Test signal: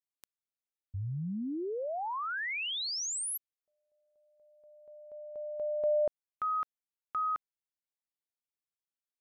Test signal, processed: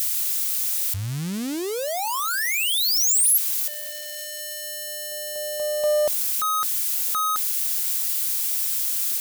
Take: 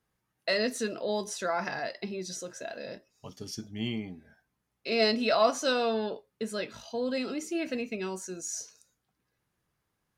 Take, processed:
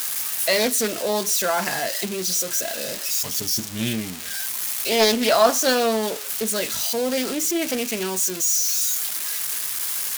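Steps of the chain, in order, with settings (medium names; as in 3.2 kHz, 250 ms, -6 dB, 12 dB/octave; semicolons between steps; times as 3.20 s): zero-crossing glitches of -23.5 dBFS; loudspeaker Doppler distortion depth 0.3 ms; trim +7.5 dB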